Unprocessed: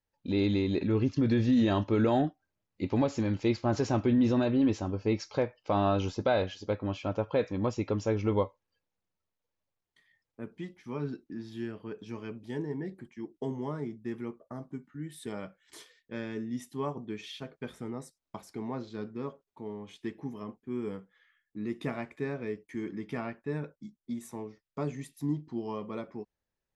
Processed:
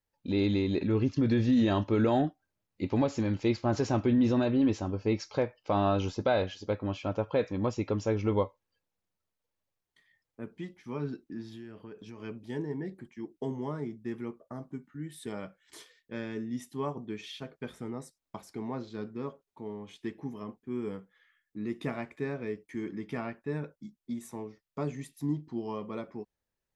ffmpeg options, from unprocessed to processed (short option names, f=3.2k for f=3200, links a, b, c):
-filter_complex "[0:a]asettb=1/sr,asplit=3[a][b][c];[a]atrim=end=11.524[d];[b]atrim=start=11.52:end=12.2,asetpts=PTS-STARTPTS,afade=t=in:d=0.004:c=qsin,afade=t=out:st=0.676:d=0.004:c=qsin,acompressor=threshold=-41dB:ratio=6:attack=3.2:release=140:knee=1:detection=peak[e];[c]atrim=start=12.196[f];[d][e]acrossfade=d=0.004:c1=hsin:c2=qsin[g];[g][f]acrossfade=d=0.004:c1=qsin:c2=hsin"